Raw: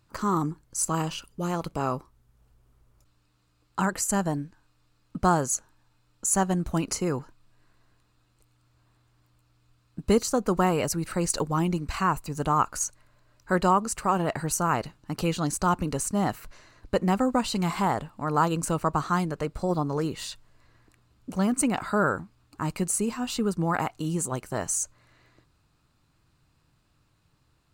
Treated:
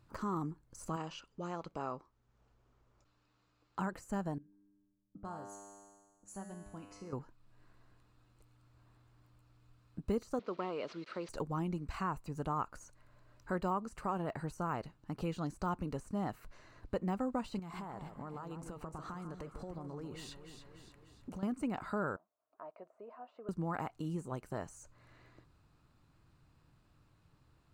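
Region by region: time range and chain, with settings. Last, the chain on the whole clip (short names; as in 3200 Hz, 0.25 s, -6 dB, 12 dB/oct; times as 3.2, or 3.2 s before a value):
0.96–3.79 steep low-pass 7400 Hz + low shelf 200 Hz -11.5 dB
4.38–7.13 low-pass opened by the level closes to 320 Hz, open at -22.5 dBFS + resonator 100 Hz, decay 1.4 s, mix 90%
10.39–11.29 delta modulation 64 kbps, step -38 dBFS + speaker cabinet 380–4700 Hz, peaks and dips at 810 Hz -9 dB, 1700 Hz -5 dB, 4200 Hz +4 dB
17.59–21.43 compressor 16:1, threshold -33 dBFS + echo with dull and thin repeats by turns 0.147 s, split 1600 Hz, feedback 68%, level -8 dB
22.16–23.49 de-esser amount 75% + ladder band-pass 690 Hz, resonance 75% + notch 820 Hz, Q 5.7
whole clip: de-esser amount 80%; high shelf 2500 Hz -8.5 dB; compressor 1.5:1, threshold -53 dBFS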